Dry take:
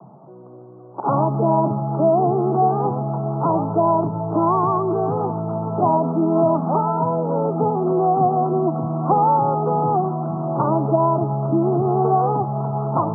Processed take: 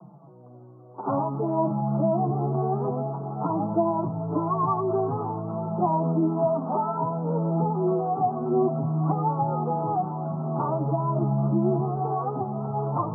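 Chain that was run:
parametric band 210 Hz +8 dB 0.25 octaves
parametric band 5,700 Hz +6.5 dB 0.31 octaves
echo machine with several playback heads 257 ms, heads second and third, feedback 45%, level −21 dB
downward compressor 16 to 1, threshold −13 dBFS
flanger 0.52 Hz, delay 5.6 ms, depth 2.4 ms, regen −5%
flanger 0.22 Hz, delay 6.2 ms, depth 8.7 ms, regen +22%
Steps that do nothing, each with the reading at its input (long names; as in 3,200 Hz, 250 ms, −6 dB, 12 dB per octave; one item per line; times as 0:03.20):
parametric band 5,700 Hz: nothing at its input above 1,400 Hz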